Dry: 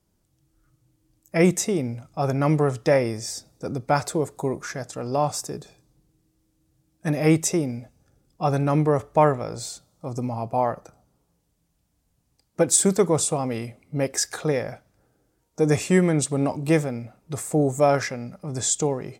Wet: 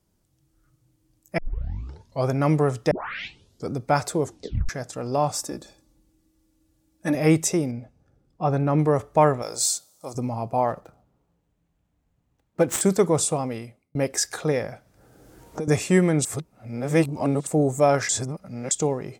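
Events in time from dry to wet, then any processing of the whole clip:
0:01.38: tape start 0.92 s
0:02.91: tape start 0.79 s
0:04.23: tape stop 0.46 s
0:05.35–0:07.15: comb filter 3.5 ms, depth 64%
0:07.71–0:08.79: low-pass filter 1,800 Hz 6 dB per octave
0:09.42–0:10.15: bass and treble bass −14 dB, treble +14 dB
0:10.68–0:12.81: running median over 9 samples
0:13.35–0:13.95: fade out
0:14.64–0:15.68: multiband upward and downward compressor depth 100%
0:16.25–0:17.47: reverse
0:18.09–0:18.71: reverse

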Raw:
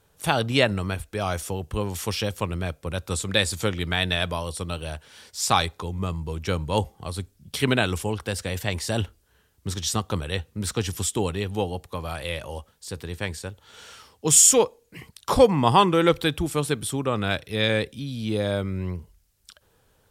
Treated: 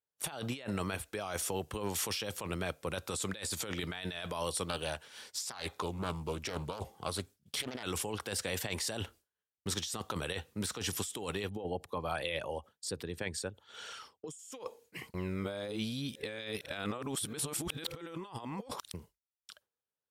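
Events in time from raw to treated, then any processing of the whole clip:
0:04.66–0:07.83: highs frequency-modulated by the lows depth 0.5 ms
0:11.49–0:14.39: spectral envelope exaggerated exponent 1.5
0:15.14–0:18.94: reverse
whole clip: high-pass filter 330 Hz 6 dB per octave; downward expander −46 dBFS; compressor whose output falls as the input rises −33 dBFS, ratio −1; level −6 dB

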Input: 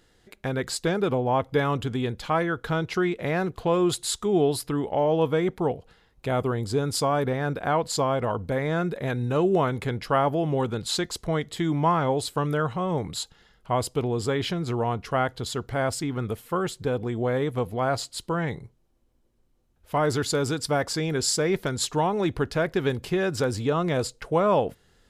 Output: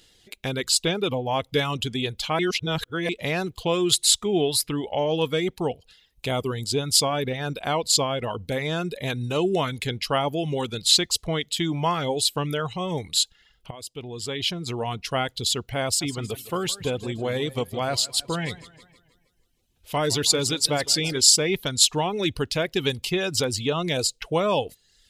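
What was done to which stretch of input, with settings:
0:02.39–0:03.09: reverse
0:13.71–0:15.01: fade in, from −19 dB
0:15.85–0:21.21: feedback echo with a swinging delay time 158 ms, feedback 46%, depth 99 cents, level −11.5 dB
whole clip: reverb reduction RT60 0.74 s; high shelf with overshoot 2,100 Hz +9.5 dB, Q 1.5

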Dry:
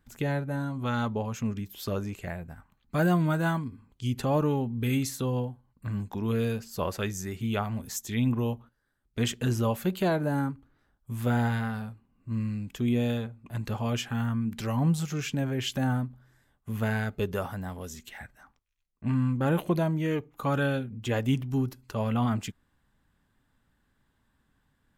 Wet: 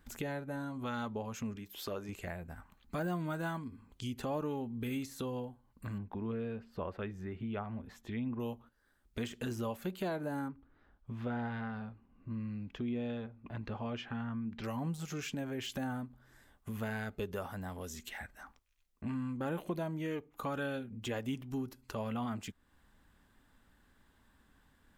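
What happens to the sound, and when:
0:01.56–0:02.09: bass and treble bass −8 dB, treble −4 dB
0:05.98–0:08.40: high-frequency loss of the air 490 metres
0:10.48–0:14.64: high-frequency loss of the air 250 metres
whole clip: de-essing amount 85%; parametric band 130 Hz −8 dB 0.68 octaves; downward compressor 2 to 1, threshold −51 dBFS; level +5 dB

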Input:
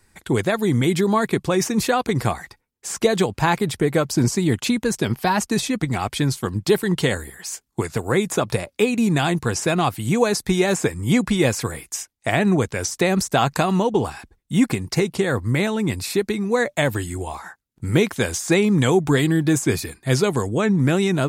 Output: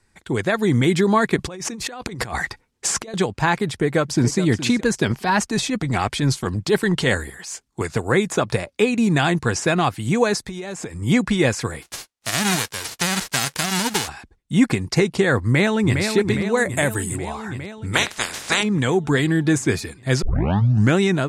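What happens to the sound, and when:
0:01.36–0:03.14: compressor whose output falls as the input rises −31 dBFS
0:03.66–0:04.38: delay throw 420 ms, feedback 15%, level −14 dB
0:05.11–0:07.81: transient designer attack −8 dB, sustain +1 dB
0:10.46–0:11.02: downward compressor 16 to 1, threshold −27 dBFS
0:11.81–0:14.07: spectral envelope flattened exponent 0.1
0:15.42–0:16.01: delay throw 410 ms, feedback 75%, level −5.5 dB
0:16.57–0:17.16: high shelf with overshoot 7,000 Hz +13 dB, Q 1.5
0:17.93–0:18.62: ceiling on every frequency bin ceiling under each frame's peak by 30 dB
0:20.22: tape start 0.73 s
whole clip: low-pass filter 8,500 Hz 12 dB per octave; dynamic equaliser 1,700 Hz, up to +4 dB, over −36 dBFS, Q 2.4; automatic gain control; level −4 dB

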